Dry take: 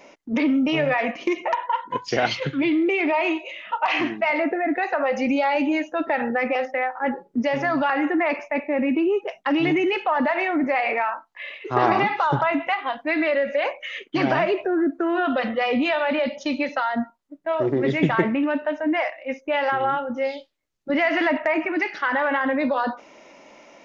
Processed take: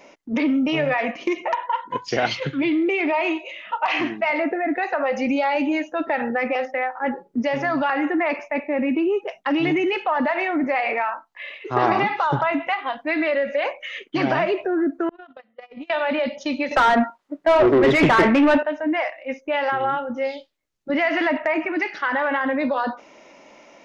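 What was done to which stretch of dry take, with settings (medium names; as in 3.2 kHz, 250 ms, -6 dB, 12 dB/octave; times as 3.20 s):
15.09–15.90 s: gate -19 dBFS, range -38 dB
16.71–18.63 s: overdrive pedal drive 24 dB, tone 1.7 kHz, clips at -6.5 dBFS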